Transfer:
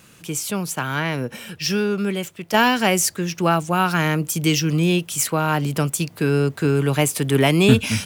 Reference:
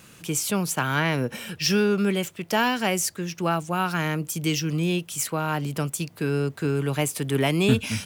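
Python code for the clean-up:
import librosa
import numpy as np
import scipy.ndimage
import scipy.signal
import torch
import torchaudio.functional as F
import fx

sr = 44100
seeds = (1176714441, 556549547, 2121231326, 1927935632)

y = fx.gain(x, sr, db=fx.steps((0.0, 0.0), (2.54, -6.0)))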